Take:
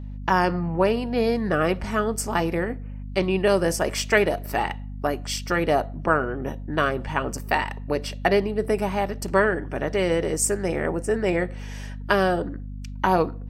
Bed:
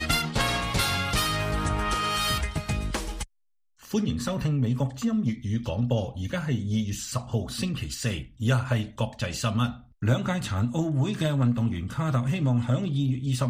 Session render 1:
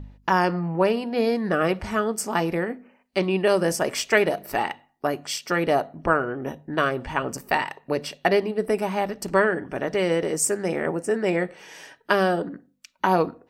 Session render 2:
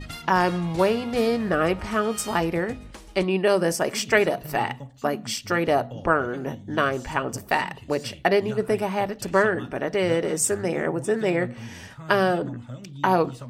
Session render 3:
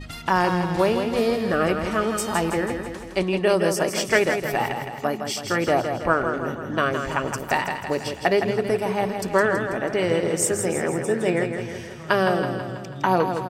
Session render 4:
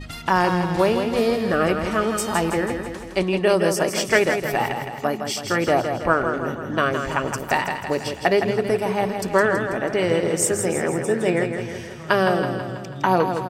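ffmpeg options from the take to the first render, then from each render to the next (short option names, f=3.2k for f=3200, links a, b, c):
-af "bandreject=f=50:t=h:w=4,bandreject=f=100:t=h:w=4,bandreject=f=150:t=h:w=4,bandreject=f=200:t=h:w=4,bandreject=f=250:t=h:w=4"
-filter_complex "[1:a]volume=-13dB[a];[0:a][a]amix=inputs=2:normalize=0"
-af "aecho=1:1:163|326|489|652|815|978|1141:0.447|0.25|0.14|0.0784|0.0439|0.0246|0.0138"
-af "volume=1.5dB"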